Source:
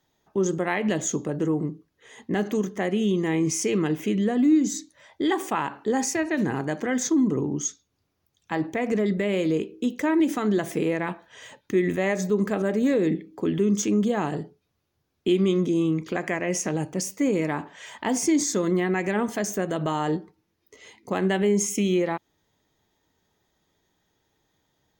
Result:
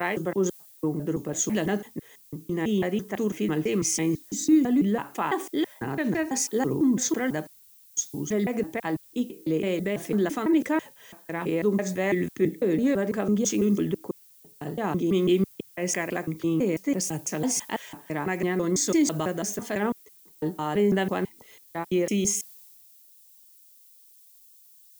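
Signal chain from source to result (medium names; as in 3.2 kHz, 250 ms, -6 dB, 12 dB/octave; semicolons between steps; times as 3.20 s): slices played last to first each 166 ms, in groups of 5; added noise violet -49 dBFS; three bands expanded up and down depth 40%; trim -1.5 dB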